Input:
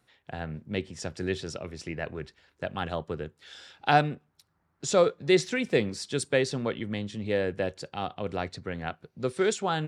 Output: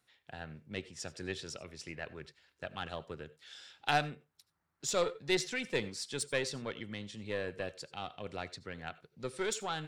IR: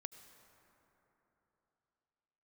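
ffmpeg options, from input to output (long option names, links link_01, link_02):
-filter_complex "[0:a]aeval=exprs='0.501*(cos(1*acos(clip(val(0)/0.501,-1,1)))-cos(1*PI/2))+0.0224*(cos(8*acos(clip(val(0)/0.501,-1,1)))-cos(8*PI/2))':channel_layout=same,tiltshelf=frequency=1300:gain=-4.5[link_01];[1:a]atrim=start_sample=2205,atrim=end_sample=4410[link_02];[link_01][link_02]afir=irnorm=-1:irlink=0,volume=-2dB"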